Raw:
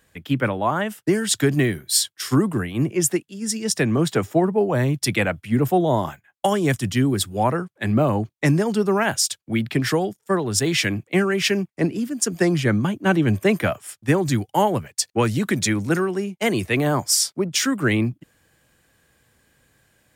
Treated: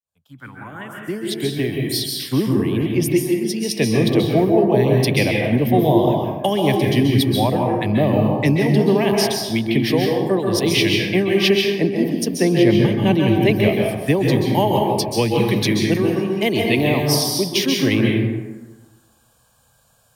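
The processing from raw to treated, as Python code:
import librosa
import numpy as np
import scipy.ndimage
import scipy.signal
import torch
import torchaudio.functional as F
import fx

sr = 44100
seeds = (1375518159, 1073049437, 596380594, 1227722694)

y = fx.fade_in_head(x, sr, length_s=3.0)
y = fx.low_shelf(y, sr, hz=350.0, db=-4.5)
y = fx.env_phaser(y, sr, low_hz=330.0, high_hz=1400.0, full_db=-27.5)
y = fx.rev_plate(y, sr, seeds[0], rt60_s=1.2, hf_ratio=0.5, predelay_ms=120, drr_db=-0.5)
y = y * librosa.db_to_amplitude(4.5)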